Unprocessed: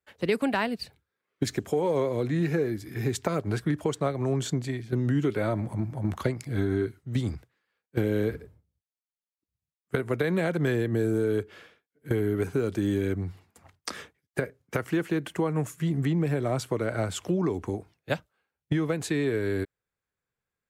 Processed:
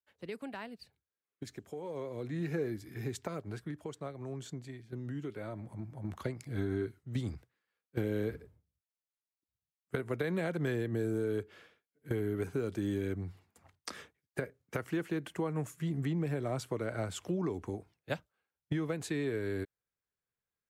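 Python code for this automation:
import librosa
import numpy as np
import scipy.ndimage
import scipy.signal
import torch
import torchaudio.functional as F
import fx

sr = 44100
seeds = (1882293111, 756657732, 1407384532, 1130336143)

y = fx.gain(x, sr, db=fx.line((1.78, -16.5), (2.67, -7.0), (3.75, -14.5), (5.52, -14.5), (6.6, -7.5)))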